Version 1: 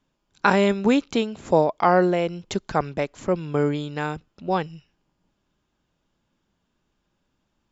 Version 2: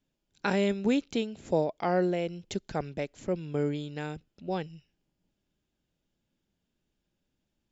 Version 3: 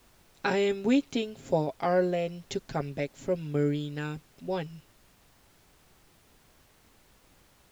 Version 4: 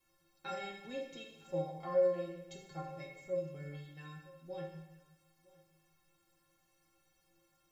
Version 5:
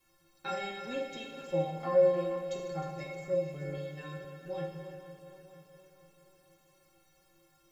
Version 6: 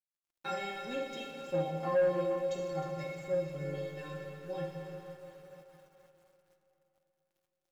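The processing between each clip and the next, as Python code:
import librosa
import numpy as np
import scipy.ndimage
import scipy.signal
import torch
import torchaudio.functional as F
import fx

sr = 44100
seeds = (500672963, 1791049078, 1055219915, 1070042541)

y1 = fx.peak_eq(x, sr, hz=1100.0, db=-10.5, octaves=0.88)
y1 = y1 * librosa.db_to_amplitude(-6.5)
y2 = y1 + 0.57 * np.pad(y1, (int(7.4 * sr / 1000.0), 0))[:len(y1)]
y2 = fx.dmg_noise_colour(y2, sr, seeds[0], colour='pink', level_db=-61.0)
y3 = fx.stiff_resonator(y2, sr, f0_hz=160.0, decay_s=0.43, stiffness=0.03)
y3 = y3 + 10.0 ** (-22.5 / 20.0) * np.pad(y3, (int(960 * sr / 1000.0), 0))[:len(y3)]
y3 = fx.rev_plate(y3, sr, seeds[1], rt60_s=1.0, hf_ratio=1.0, predelay_ms=0, drr_db=1.0)
y3 = y3 * librosa.db_to_amplitude(-2.0)
y4 = fx.reverse_delay_fb(y3, sr, ms=236, feedback_pct=72, wet_db=-11.5)
y4 = y4 + 10.0 ** (-12.5 / 20.0) * np.pad(y4, (int(310 * sr / 1000.0), 0))[:len(y4)]
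y4 = y4 * librosa.db_to_amplitude(5.5)
y5 = np.sign(y4) * np.maximum(np.abs(y4) - 10.0 ** (-59.5 / 20.0), 0.0)
y5 = fx.rev_freeverb(y5, sr, rt60_s=3.8, hf_ratio=0.65, predelay_ms=5, drr_db=8.0)
y5 = 10.0 ** (-22.0 / 20.0) * np.tanh(y5 / 10.0 ** (-22.0 / 20.0))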